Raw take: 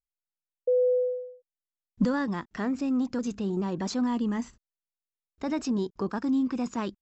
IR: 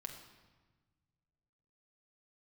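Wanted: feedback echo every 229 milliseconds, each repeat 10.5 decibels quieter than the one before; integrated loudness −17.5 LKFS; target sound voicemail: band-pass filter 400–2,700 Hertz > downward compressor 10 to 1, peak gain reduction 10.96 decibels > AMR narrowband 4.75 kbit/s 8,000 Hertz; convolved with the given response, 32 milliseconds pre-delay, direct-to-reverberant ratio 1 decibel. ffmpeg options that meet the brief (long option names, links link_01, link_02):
-filter_complex "[0:a]aecho=1:1:229|458|687:0.299|0.0896|0.0269,asplit=2[link_01][link_02];[1:a]atrim=start_sample=2205,adelay=32[link_03];[link_02][link_03]afir=irnorm=-1:irlink=0,volume=2dB[link_04];[link_01][link_04]amix=inputs=2:normalize=0,highpass=400,lowpass=2700,acompressor=threshold=-27dB:ratio=10,volume=18dB" -ar 8000 -c:a libopencore_amrnb -b:a 4750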